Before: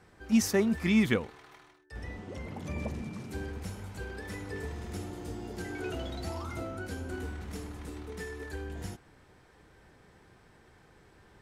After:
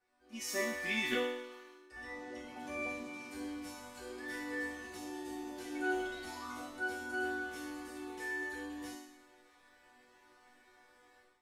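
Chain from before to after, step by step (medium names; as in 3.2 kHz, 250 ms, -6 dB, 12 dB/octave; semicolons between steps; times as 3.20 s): bass shelf 350 Hz -11.5 dB; chord resonator B3 minor, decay 0.83 s; level rider gain up to 14.5 dB; trim +7.5 dB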